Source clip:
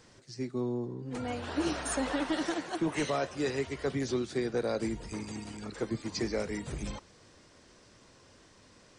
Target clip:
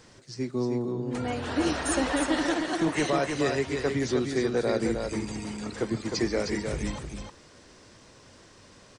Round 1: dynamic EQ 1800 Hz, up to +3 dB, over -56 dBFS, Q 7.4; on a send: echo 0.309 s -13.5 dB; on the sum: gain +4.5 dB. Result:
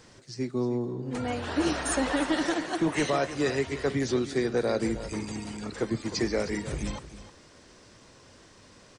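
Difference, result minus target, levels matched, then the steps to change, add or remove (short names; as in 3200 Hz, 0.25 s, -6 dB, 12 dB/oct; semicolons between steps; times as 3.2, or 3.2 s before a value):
echo-to-direct -8 dB
change: echo 0.309 s -5.5 dB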